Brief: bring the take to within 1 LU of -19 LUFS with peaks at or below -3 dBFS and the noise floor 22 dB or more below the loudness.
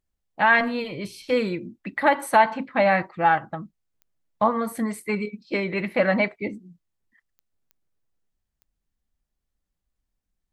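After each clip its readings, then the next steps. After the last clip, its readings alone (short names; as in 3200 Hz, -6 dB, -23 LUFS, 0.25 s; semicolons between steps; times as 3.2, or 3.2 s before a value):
clicks 4; loudness -23.0 LUFS; peak -6.0 dBFS; loudness target -19.0 LUFS
-> de-click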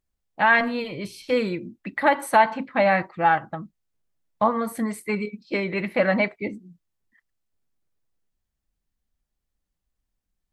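clicks 0; loudness -23.0 LUFS; peak -6.0 dBFS; loudness target -19.0 LUFS
-> gain +4 dB; limiter -3 dBFS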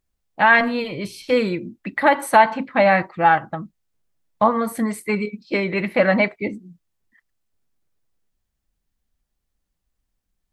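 loudness -19.5 LUFS; peak -3.0 dBFS; noise floor -78 dBFS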